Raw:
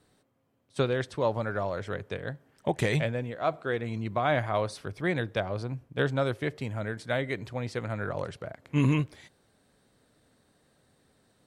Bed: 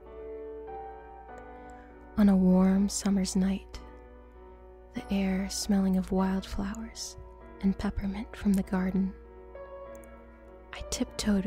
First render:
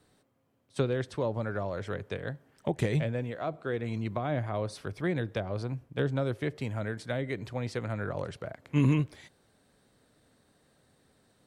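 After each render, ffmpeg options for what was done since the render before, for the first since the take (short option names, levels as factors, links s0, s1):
-filter_complex "[0:a]acrossover=split=490[s0][s1];[s1]acompressor=threshold=0.0178:ratio=10[s2];[s0][s2]amix=inputs=2:normalize=0"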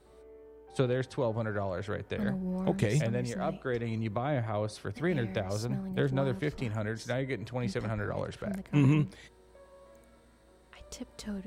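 -filter_complex "[1:a]volume=0.266[s0];[0:a][s0]amix=inputs=2:normalize=0"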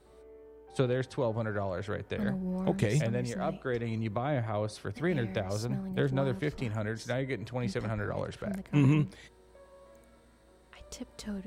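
-af anull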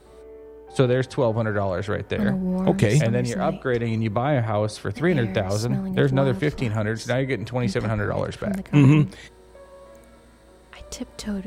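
-af "volume=2.99"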